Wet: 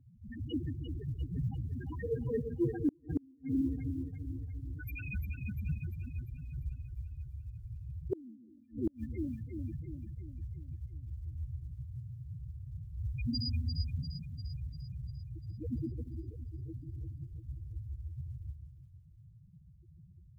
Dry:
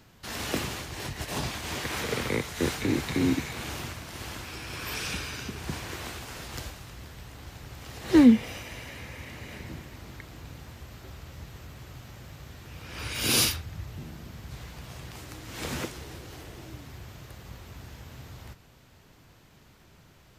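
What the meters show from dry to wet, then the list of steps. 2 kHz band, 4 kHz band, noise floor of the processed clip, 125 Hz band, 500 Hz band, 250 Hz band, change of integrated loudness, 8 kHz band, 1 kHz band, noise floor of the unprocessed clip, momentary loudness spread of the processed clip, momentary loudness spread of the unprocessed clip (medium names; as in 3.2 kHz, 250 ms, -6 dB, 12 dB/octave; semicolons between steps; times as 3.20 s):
-18.5 dB, -15.5 dB, -59 dBFS, +0.5 dB, -6.5 dB, -10.5 dB, -10.5 dB, under -40 dB, under -20 dB, -57 dBFS, 12 LU, 19 LU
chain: one-sided clip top -23 dBFS; loudest bins only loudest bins 1; short-mantissa float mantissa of 6-bit; two-band feedback delay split 310 Hz, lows 138 ms, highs 347 ms, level -7 dB; inverted gate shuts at -31 dBFS, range -36 dB; trim +9.5 dB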